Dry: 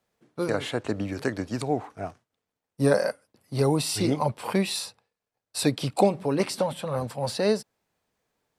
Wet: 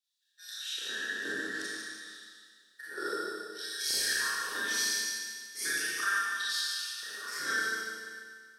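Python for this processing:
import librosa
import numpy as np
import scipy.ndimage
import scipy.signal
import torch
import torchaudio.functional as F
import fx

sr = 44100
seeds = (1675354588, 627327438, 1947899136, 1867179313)

y = fx.band_invert(x, sr, width_hz=2000)
y = fx.tone_stack(y, sr, knobs='10-0-1')
y = fx.over_compress(y, sr, threshold_db=-57.0, ratio=-1.0, at=(2.07, 3.06))
y = fx.filter_lfo_highpass(y, sr, shape='square', hz=0.64, low_hz=420.0, high_hz=3900.0, q=2.9)
y = fx.echo_feedback(y, sr, ms=149, feedback_pct=48, wet_db=-8.0)
y = fx.rev_schroeder(y, sr, rt60_s=1.8, comb_ms=28, drr_db=-9.5)
y = y * librosa.db_to_amplitude(9.0)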